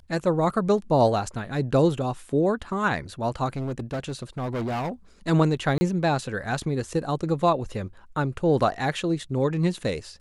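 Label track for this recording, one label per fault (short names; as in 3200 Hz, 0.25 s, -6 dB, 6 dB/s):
3.560000	4.900000	clipped -25.5 dBFS
5.780000	5.810000	gap 30 ms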